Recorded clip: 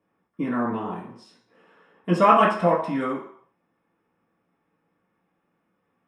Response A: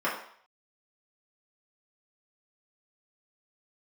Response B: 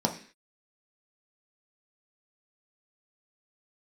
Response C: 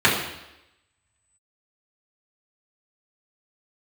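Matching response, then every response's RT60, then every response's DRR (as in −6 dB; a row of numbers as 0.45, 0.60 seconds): A; 0.60, 0.45, 0.90 seconds; −8.0, 1.5, −8.0 decibels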